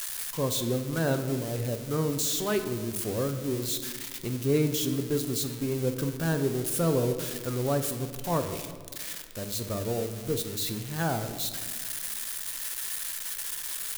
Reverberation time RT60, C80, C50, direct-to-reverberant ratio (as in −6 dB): 1.7 s, 11.5 dB, 9.5 dB, 7.0 dB